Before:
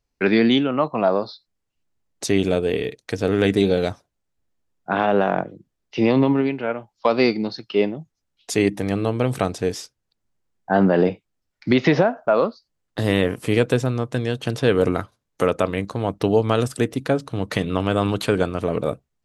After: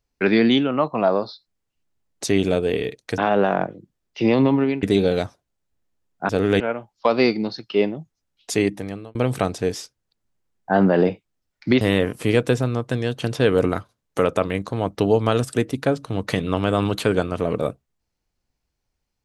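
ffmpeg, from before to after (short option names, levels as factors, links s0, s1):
-filter_complex "[0:a]asplit=7[s0][s1][s2][s3][s4][s5][s6];[s0]atrim=end=3.182[s7];[s1]atrim=start=4.948:end=6.602[s8];[s2]atrim=start=3.488:end=4.952[s9];[s3]atrim=start=3.178:end=3.492[s10];[s4]atrim=start=6.598:end=9.15,asetpts=PTS-STARTPTS,afade=t=out:st=1.942:d=0.61[s11];[s5]atrim=start=9.15:end=11.812,asetpts=PTS-STARTPTS,afade=t=in:d=0.004:c=hsin[s12];[s6]atrim=start=13.038[s13];[s7][s8]acrossfade=d=0.004:c1=hsin:c2=hsin[s14];[s14][s9]acrossfade=d=0.004:c1=hsin:c2=hsin[s15];[s15][s10]acrossfade=d=0.004:c1=hsin:c2=hsin[s16];[s11][s12]concat=n=2:v=0:a=1[s17];[s16][s17]acrossfade=d=0.004:c1=hsin:c2=hsin[s18];[s18][s13]acrossfade=d=0.004:c1=hsin:c2=hsin"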